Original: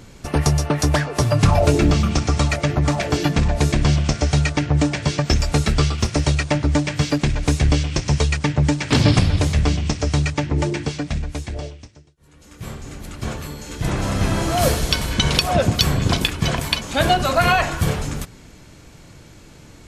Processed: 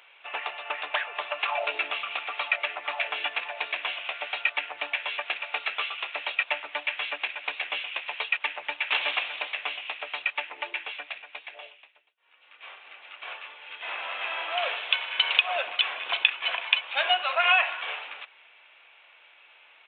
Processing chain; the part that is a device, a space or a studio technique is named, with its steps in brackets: musical greeting card (resampled via 8 kHz; high-pass 710 Hz 24 dB/octave; peaking EQ 2.6 kHz +11 dB 0.55 oct); trim -6.5 dB

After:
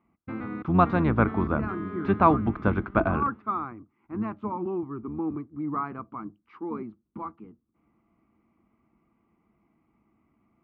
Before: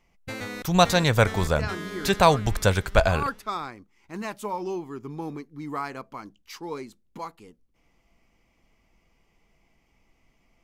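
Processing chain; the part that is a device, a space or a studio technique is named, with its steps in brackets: sub-octave bass pedal (octave divider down 1 oct, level -2 dB; cabinet simulation 80–2000 Hz, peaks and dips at 220 Hz +10 dB, 320 Hz +10 dB, 530 Hz -6 dB, 1.2 kHz +9 dB, 1.8 kHz -7 dB); trim -4 dB

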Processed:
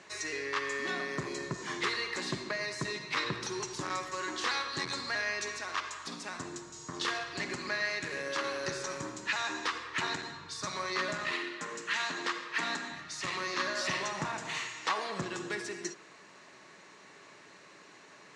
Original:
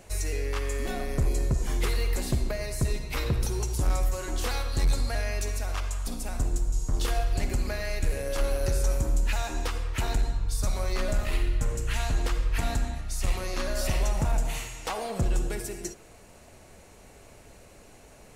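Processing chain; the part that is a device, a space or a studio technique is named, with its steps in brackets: television speaker (cabinet simulation 180–6500 Hz, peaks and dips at 230 Hz -10 dB, 500 Hz -8 dB, 720 Hz -8 dB, 1.1 kHz +7 dB, 1.8 kHz +8 dB, 3.9 kHz +4 dB); 11.31–12.91 s: high-pass 190 Hz 24 dB/octave

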